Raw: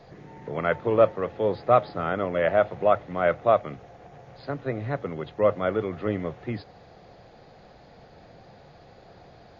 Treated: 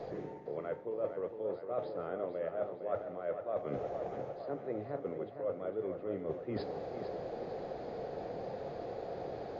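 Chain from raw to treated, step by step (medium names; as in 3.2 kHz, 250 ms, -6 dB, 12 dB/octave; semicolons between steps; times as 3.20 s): peaking EQ 450 Hz +14.5 dB 1.8 oct; reverse; compression 8:1, threshold -34 dBFS, peak gain reduction 31 dB; reverse; flange 0.69 Hz, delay 8.6 ms, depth 6.7 ms, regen -76%; tape echo 456 ms, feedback 67%, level -7 dB, low-pass 3.5 kHz; trim +2.5 dB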